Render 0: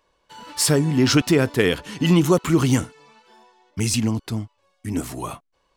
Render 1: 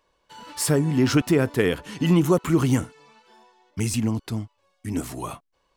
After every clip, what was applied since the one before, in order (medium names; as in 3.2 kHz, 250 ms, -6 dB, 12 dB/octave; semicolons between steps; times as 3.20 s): dynamic bell 4.5 kHz, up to -7 dB, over -37 dBFS, Q 0.76; trim -2 dB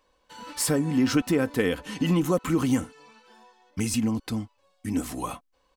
comb 3.9 ms, depth 47%; compression 1.5:1, threshold -26 dBFS, peak gain reduction 5 dB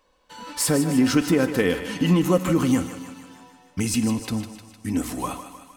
thinning echo 153 ms, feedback 60%, high-pass 420 Hz, level -10 dB; reverberation RT60 1.3 s, pre-delay 3 ms, DRR 14 dB; trim +3 dB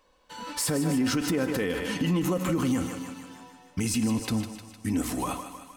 peak limiter -18.5 dBFS, peak gain reduction 11.5 dB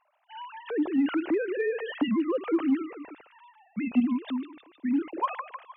formants replaced by sine waves; in parallel at -10.5 dB: hard clipper -21.5 dBFS, distortion -13 dB; on the sum: trim -2.5 dB